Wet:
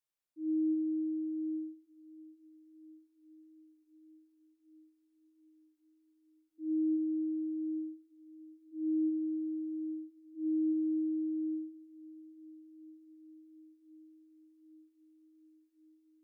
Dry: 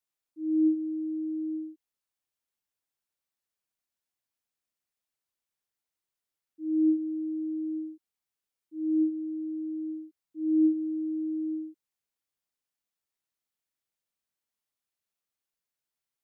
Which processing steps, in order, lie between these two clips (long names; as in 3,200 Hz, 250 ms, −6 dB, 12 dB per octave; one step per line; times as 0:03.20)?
brickwall limiter −24.5 dBFS, peak gain reduction 8 dB
feedback delay with all-pass diffusion 682 ms, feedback 75%, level −14.5 dB
convolution reverb, pre-delay 7 ms, DRR 6 dB
level −5.5 dB